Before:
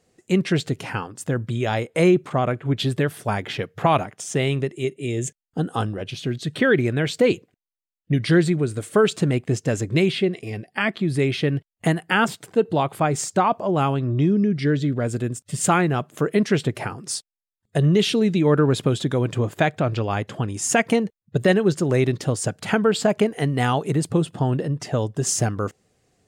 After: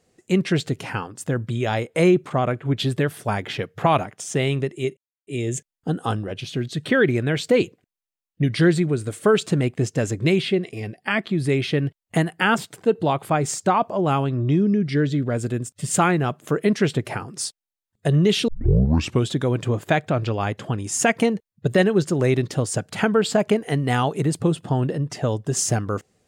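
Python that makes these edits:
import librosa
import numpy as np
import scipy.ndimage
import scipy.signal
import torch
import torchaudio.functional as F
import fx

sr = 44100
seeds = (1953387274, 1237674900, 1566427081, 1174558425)

y = fx.edit(x, sr, fx.insert_silence(at_s=4.97, length_s=0.3),
    fx.tape_start(start_s=18.18, length_s=0.77), tone=tone)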